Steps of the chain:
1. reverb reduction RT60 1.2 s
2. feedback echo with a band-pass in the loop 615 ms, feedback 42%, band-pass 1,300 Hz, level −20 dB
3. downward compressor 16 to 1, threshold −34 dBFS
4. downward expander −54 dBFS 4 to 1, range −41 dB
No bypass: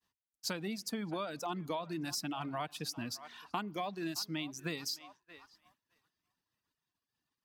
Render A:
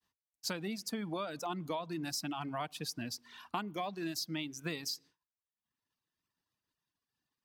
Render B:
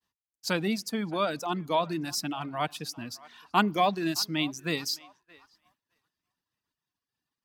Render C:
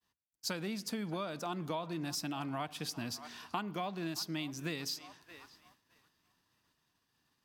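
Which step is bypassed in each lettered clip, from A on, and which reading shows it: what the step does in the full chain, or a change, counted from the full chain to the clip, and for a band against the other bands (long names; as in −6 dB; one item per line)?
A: 2, change in momentary loudness spread −1 LU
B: 3, average gain reduction 6.5 dB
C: 1, 125 Hz band +2.0 dB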